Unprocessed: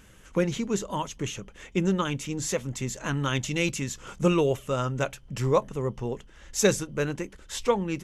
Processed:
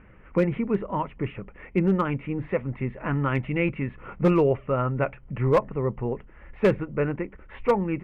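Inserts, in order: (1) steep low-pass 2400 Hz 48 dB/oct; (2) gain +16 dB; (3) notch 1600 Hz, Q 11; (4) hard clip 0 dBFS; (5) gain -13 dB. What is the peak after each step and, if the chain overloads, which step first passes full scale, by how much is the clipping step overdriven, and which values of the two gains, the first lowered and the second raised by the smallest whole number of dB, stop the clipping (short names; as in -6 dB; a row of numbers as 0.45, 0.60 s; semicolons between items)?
-9.5, +6.5, +6.5, 0.0, -13.0 dBFS; step 2, 6.5 dB; step 2 +9 dB, step 5 -6 dB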